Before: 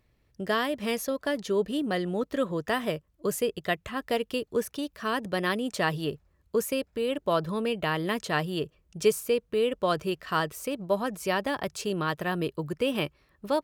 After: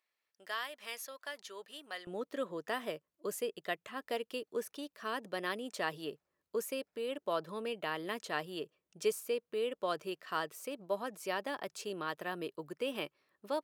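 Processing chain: high-pass 980 Hz 12 dB/octave, from 2.07 s 290 Hz; trim -8.5 dB

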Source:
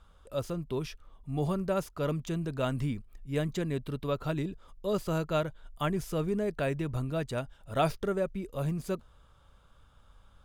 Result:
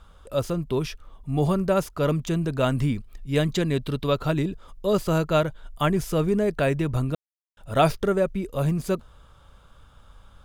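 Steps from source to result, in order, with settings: 2.94–4.23 s: peaking EQ 3.9 kHz +5 dB 1.2 oct; 7.15–7.57 s: mute; trim +8 dB

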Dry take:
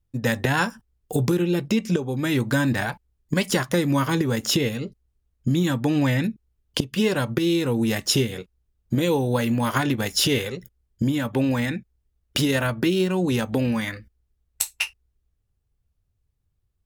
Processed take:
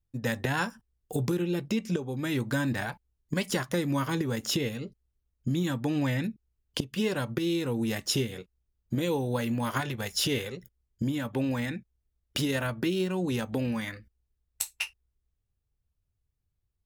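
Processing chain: 9.80–10.26 s: peaking EQ 280 Hz -12.5 dB 0.44 oct; trim -7 dB

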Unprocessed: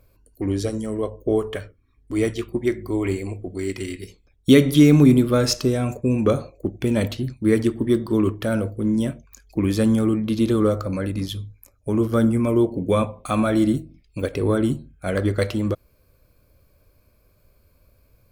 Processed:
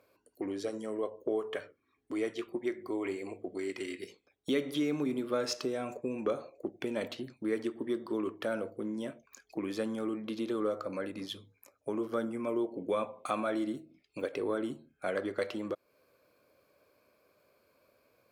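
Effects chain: low-pass 3.2 kHz 6 dB/octave; compression 2:1, threshold -33 dBFS, peak gain reduction 13.5 dB; high-pass 370 Hz 12 dB/octave

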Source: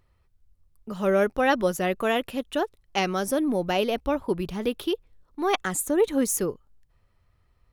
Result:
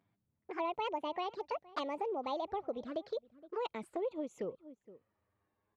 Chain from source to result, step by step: gliding tape speed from 182% -> 86%; tape spacing loss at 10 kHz 34 dB; touch-sensitive flanger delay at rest 10.6 ms, full sweep at -26 dBFS; high-pass 200 Hz 12 dB/octave; echo from a far wall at 80 m, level -25 dB; compression 4:1, threshold -30 dBFS, peak gain reduction 9.5 dB; dynamic bell 260 Hz, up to -7 dB, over -46 dBFS, Q 0.79; trim -1 dB

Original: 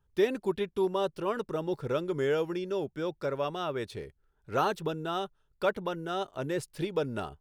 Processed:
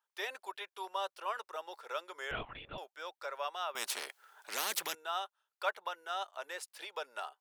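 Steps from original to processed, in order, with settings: high-pass 720 Hz 24 dB/octave; 2.31–2.78 s: LPC vocoder at 8 kHz whisper; 3.75–4.95 s: spectrum-flattening compressor 4:1; trim -1.5 dB

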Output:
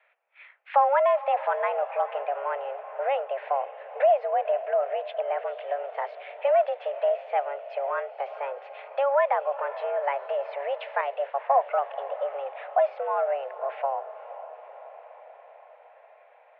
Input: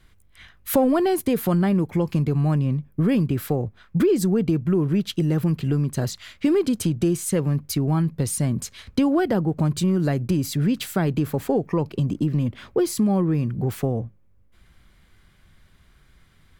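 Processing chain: mistuned SSB +280 Hz 310–2400 Hz; echo that smears into a reverb 493 ms, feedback 64%, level -14 dB; 11.01–11.61 s: three bands expanded up and down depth 100%

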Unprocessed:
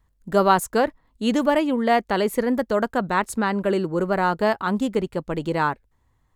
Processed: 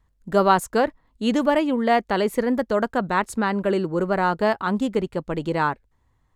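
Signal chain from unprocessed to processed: treble shelf 11 kHz -8.5 dB

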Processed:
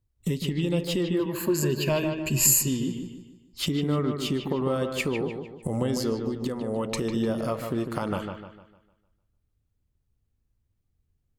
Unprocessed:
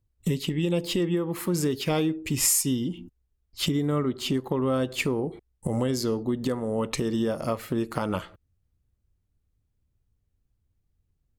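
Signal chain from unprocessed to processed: 1.19–2.68 s: rippled EQ curve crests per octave 1.4, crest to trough 15 dB; 6.14–6.68 s: compression 2:1, threshold -28 dBFS, peak gain reduction 3.5 dB; feedback echo behind a low-pass 151 ms, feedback 40%, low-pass 3.3 kHz, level -6 dB; trim -1.5 dB

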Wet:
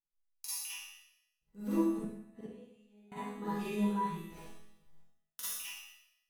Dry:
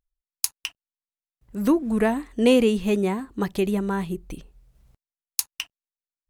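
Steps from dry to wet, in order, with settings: 4.24–5.40 s: cycle switcher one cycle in 2, inverted; chord resonator E3 major, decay 0.68 s; 1.99–3.12 s: inverted gate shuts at -41 dBFS, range -33 dB; reverberation RT60 0.75 s, pre-delay 39 ms, DRR -9.5 dB

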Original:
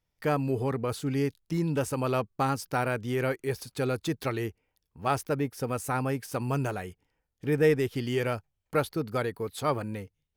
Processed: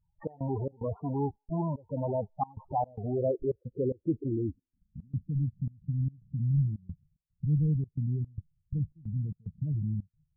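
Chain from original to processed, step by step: square wave that keeps the level; in parallel at -1 dB: compressor with a negative ratio -33 dBFS, ratio -1; on the sum: low-pass sweep 940 Hz -> 160 Hz, 2.64–5.39 s; loudest bins only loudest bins 8; trance gate "xx.xx.xx" 111 bpm -24 dB; on a send: feedback echo behind a high-pass 85 ms, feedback 39%, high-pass 4 kHz, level -15 dB; on the sum: trim -8.5 dB

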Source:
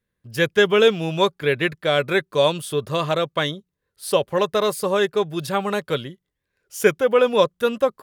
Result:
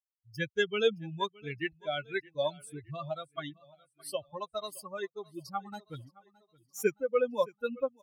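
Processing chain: expander on every frequency bin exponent 3; 5.72–6.83 s: waveshaping leveller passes 1; feedback delay 618 ms, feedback 46%, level -23 dB; trim -7.5 dB

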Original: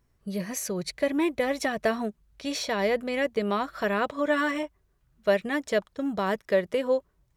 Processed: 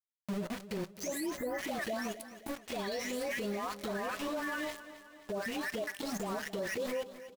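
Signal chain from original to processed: delay that grows with frequency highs late, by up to 593 ms; band-stop 1.4 kHz, Q 13; small samples zeroed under -35 dBFS; on a send at -16 dB: reverberation RT60 0.25 s, pre-delay 3 ms; on the sum: spectral selection erased 1.37–1.58 s, 2.1–12 kHz; peak limiter -29 dBFS, peak gain reduction 14.5 dB; feedback delay 264 ms, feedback 48%, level -14 dB; upward compressor, threshold -50 dBFS

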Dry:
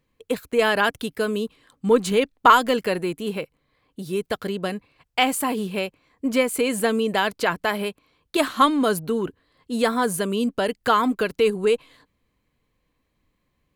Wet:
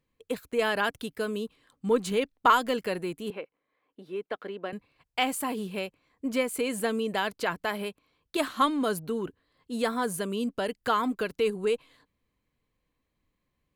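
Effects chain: 3.30–4.73 s: three-band isolator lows -23 dB, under 250 Hz, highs -22 dB, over 3.1 kHz; trim -7 dB

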